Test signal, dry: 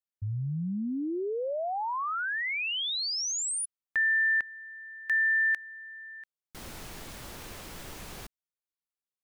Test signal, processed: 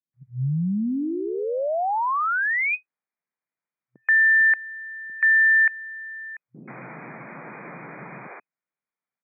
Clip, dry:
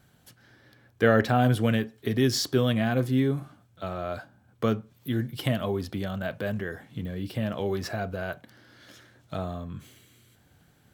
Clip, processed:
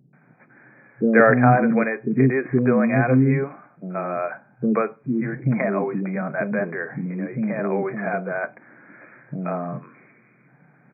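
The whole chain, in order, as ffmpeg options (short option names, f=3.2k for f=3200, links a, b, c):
-filter_complex "[0:a]acrossover=split=380[a][b];[b]adelay=130[c];[a][c]amix=inputs=2:normalize=0,afftfilt=real='re*between(b*sr/4096,120,2500)':imag='im*between(b*sr/4096,120,2500)':win_size=4096:overlap=0.75,volume=8.5dB"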